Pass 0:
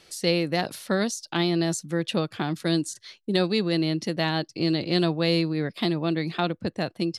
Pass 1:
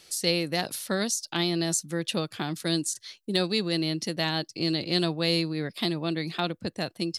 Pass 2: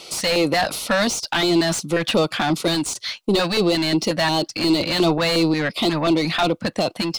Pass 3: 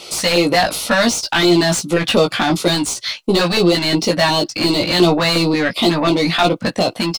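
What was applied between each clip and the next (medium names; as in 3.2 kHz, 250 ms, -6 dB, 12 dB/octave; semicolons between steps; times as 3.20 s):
treble shelf 4.2 kHz +12 dB; trim -4 dB
overdrive pedal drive 27 dB, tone 1.6 kHz, clips at -9.5 dBFS; LFO notch square 2.8 Hz 390–1700 Hz; trim +3.5 dB
doubling 17 ms -4 dB; trim +3.5 dB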